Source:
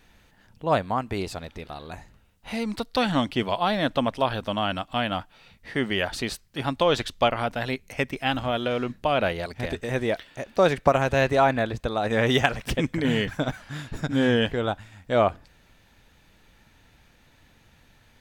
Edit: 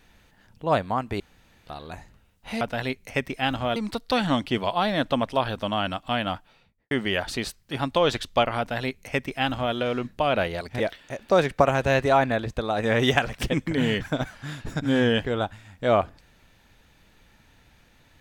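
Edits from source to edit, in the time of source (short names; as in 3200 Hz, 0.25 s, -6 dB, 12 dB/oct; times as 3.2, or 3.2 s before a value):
1.2–1.67 room tone
5.19–5.76 studio fade out
7.44–8.59 copy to 2.61
9.65–10.07 cut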